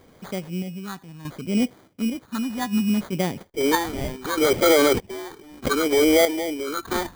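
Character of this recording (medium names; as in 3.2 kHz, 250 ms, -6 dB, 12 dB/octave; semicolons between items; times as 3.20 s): random-step tremolo 1.6 Hz, depth 85%; phasing stages 6, 0.68 Hz, lowest notch 460–2000 Hz; aliases and images of a low sample rate 2.7 kHz, jitter 0%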